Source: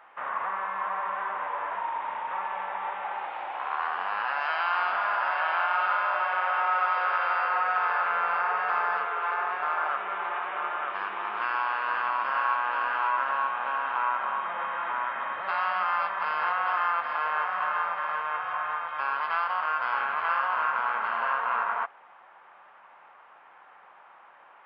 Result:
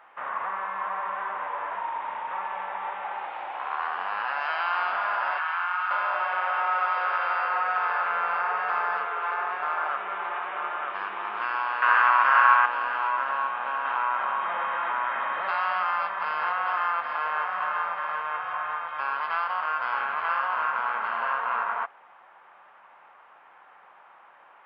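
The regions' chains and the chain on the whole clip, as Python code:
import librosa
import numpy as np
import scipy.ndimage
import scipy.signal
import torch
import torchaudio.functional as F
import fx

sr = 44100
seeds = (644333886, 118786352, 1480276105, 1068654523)

y = fx.chain(x, sr, fx.highpass(hz=1000.0, slope=24),
    fx.high_shelf(hz=2900.0, db=-8.5),
    fx.env_flatten(amount_pct=50), at=(5.38, 5.91))
y = fx.chain(y, sr, fx.highpass(hz=180.0, slope=12),
    fx.peak_eq(hz=1600.0, db=10.5, octaves=2.1), at=(11.82, 12.66))
y = fx.chain(y, sr, fx.low_shelf(hz=110.0, db=-11.5),
    fx.env_flatten(amount_pct=50), at=(13.85, 15.91))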